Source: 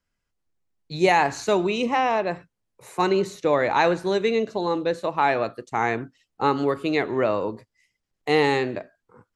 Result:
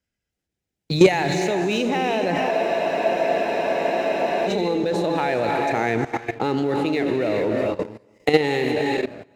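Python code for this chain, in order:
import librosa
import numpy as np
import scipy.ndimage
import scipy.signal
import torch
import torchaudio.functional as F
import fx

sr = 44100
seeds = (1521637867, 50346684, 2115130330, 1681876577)

p1 = fx.recorder_agc(x, sr, target_db=-11.5, rise_db_per_s=18.0, max_gain_db=30)
p2 = fx.peak_eq(p1, sr, hz=1100.0, db=-13.5, octaves=0.55)
p3 = fx.echo_feedback(p2, sr, ms=209, feedback_pct=34, wet_db=-16)
p4 = np.sign(p3) * np.maximum(np.abs(p3) - 10.0 ** (-39.0 / 20.0), 0.0)
p5 = p3 + (p4 * librosa.db_to_amplitude(-4.0))
p6 = scipy.signal.sosfilt(scipy.signal.butter(2, 45.0, 'highpass', fs=sr, output='sos'), p5)
p7 = fx.rev_gated(p6, sr, seeds[0], gate_ms=450, shape='rising', drr_db=5.5)
p8 = fx.level_steps(p7, sr, step_db=14)
p9 = fx.high_shelf(p8, sr, hz=9100.0, db=-4.5)
p10 = fx.notch(p9, sr, hz=4400.0, q=19.0)
p11 = fx.leveller(p10, sr, passes=1)
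p12 = fx.spec_freeze(p11, sr, seeds[1], at_s=2.52, hold_s=1.95)
y = p12 * librosa.db_to_amplitude(2.5)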